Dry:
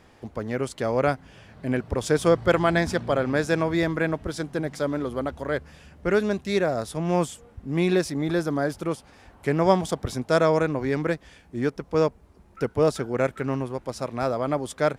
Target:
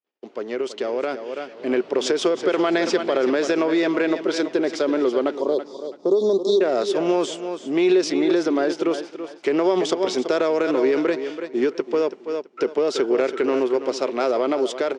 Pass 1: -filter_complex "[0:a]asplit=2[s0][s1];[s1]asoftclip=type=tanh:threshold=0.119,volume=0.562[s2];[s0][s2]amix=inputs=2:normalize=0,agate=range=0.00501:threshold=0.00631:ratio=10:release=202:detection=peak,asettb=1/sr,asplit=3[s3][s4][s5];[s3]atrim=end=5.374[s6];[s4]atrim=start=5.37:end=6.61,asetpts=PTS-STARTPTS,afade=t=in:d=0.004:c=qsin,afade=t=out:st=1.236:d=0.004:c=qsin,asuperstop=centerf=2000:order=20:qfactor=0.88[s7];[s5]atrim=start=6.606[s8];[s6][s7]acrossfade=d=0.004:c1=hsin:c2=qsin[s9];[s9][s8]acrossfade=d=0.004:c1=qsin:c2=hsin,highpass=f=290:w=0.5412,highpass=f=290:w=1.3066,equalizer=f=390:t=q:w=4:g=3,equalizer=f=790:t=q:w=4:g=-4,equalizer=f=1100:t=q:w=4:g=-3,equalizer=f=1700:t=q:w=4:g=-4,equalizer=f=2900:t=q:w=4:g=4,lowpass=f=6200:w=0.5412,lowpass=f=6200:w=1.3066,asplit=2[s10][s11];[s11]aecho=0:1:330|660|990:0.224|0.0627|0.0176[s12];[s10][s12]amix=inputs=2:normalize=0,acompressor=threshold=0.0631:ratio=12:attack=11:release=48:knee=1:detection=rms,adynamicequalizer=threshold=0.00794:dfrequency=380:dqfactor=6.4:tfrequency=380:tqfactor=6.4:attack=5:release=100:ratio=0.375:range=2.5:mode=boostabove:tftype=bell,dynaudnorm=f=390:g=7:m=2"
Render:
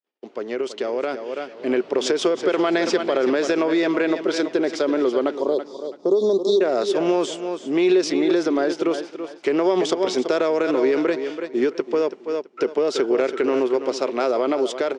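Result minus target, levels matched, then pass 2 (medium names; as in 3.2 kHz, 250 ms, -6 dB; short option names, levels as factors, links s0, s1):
saturation: distortion -6 dB
-filter_complex "[0:a]asplit=2[s0][s1];[s1]asoftclip=type=tanh:threshold=0.0447,volume=0.562[s2];[s0][s2]amix=inputs=2:normalize=0,agate=range=0.00501:threshold=0.00631:ratio=10:release=202:detection=peak,asettb=1/sr,asplit=3[s3][s4][s5];[s3]atrim=end=5.374[s6];[s4]atrim=start=5.37:end=6.61,asetpts=PTS-STARTPTS,afade=t=in:d=0.004:c=qsin,afade=t=out:st=1.236:d=0.004:c=qsin,asuperstop=centerf=2000:order=20:qfactor=0.88[s7];[s5]atrim=start=6.606[s8];[s6][s7]acrossfade=d=0.004:c1=hsin:c2=qsin[s9];[s9][s8]acrossfade=d=0.004:c1=qsin:c2=hsin,highpass=f=290:w=0.5412,highpass=f=290:w=1.3066,equalizer=f=390:t=q:w=4:g=3,equalizer=f=790:t=q:w=4:g=-4,equalizer=f=1100:t=q:w=4:g=-3,equalizer=f=1700:t=q:w=4:g=-4,equalizer=f=2900:t=q:w=4:g=4,lowpass=f=6200:w=0.5412,lowpass=f=6200:w=1.3066,asplit=2[s10][s11];[s11]aecho=0:1:330|660|990:0.224|0.0627|0.0176[s12];[s10][s12]amix=inputs=2:normalize=0,acompressor=threshold=0.0631:ratio=12:attack=11:release=48:knee=1:detection=rms,adynamicequalizer=threshold=0.00794:dfrequency=380:dqfactor=6.4:tfrequency=380:tqfactor=6.4:attack=5:release=100:ratio=0.375:range=2.5:mode=boostabove:tftype=bell,dynaudnorm=f=390:g=7:m=2"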